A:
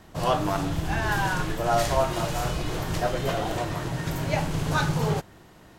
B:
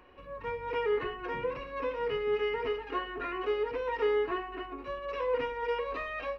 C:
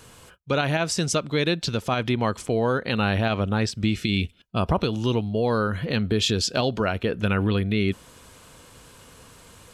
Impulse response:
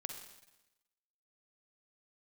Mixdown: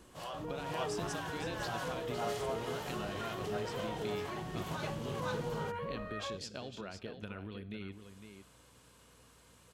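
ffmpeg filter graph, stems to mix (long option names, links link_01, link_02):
-filter_complex "[0:a]highpass=110,equalizer=frequency=3100:width=4.1:gain=5.5,volume=-12dB,asplit=2[link_01][link_02];[link_02]volume=-4dB[link_03];[1:a]lowpass=1600,volume=-0.5dB[link_04];[2:a]highpass=99,acompressor=threshold=-28dB:ratio=4,volume=-16dB,asplit=3[link_05][link_06][link_07];[link_06]volume=-6.5dB[link_08];[link_07]volume=-6.5dB[link_09];[link_01][link_04]amix=inputs=2:normalize=0,acrossover=split=570[link_10][link_11];[link_10]aeval=exprs='val(0)*(1-0.7/2+0.7/2*cos(2*PI*2*n/s))':channel_layout=same[link_12];[link_11]aeval=exprs='val(0)*(1-0.7/2-0.7/2*cos(2*PI*2*n/s))':channel_layout=same[link_13];[link_12][link_13]amix=inputs=2:normalize=0,alimiter=level_in=10dB:limit=-24dB:level=0:latency=1:release=27,volume=-10dB,volume=0dB[link_14];[3:a]atrim=start_sample=2205[link_15];[link_08][link_15]afir=irnorm=-1:irlink=0[link_16];[link_03][link_09]amix=inputs=2:normalize=0,aecho=0:1:506:1[link_17];[link_05][link_14][link_16][link_17]amix=inputs=4:normalize=0,aeval=exprs='val(0)+0.000398*(sin(2*PI*60*n/s)+sin(2*PI*2*60*n/s)/2+sin(2*PI*3*60*n/s)/3+sin(2*PI*4*60*n/s)/4+sin(2*PI*5*60*n/s)/5)':channel_layout=same"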